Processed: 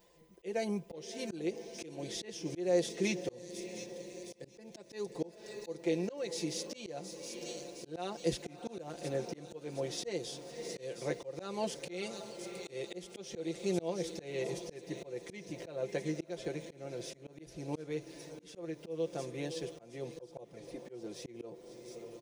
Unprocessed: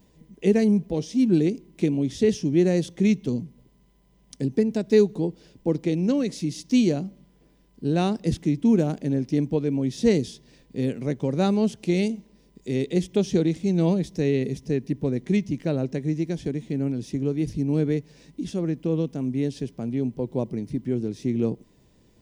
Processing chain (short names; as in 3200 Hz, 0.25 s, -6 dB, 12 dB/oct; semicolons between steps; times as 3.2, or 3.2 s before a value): resonant low shelf 340 Hz -13 dB, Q 1.5; comb 5.8 ms, depth 73%; thin delay 0.716 s, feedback 53%, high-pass 5300 Hz, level -4 dB; 20.14–20.89 envelope flanger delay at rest 6.7 ms, full sweep at -20.5 dBFS; diffused feedback echo 0.603 s, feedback 60%, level -15.5 dB; auto swell 0.308 s; gain -3.5 dB